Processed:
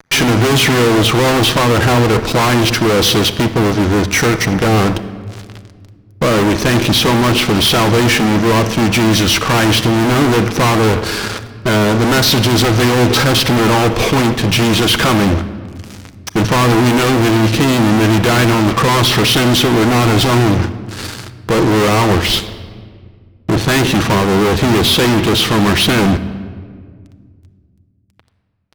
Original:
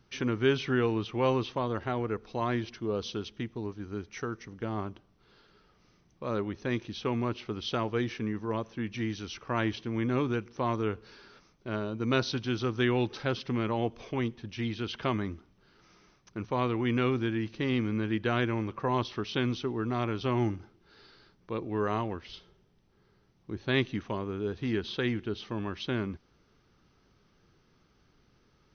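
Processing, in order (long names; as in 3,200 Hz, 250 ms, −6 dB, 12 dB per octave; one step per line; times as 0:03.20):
fuzz pedal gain 50 dB, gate −55 dBFS
rectangular room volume 2,900 cubic metres, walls mixed, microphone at 0.63 metres
level +2.5 dB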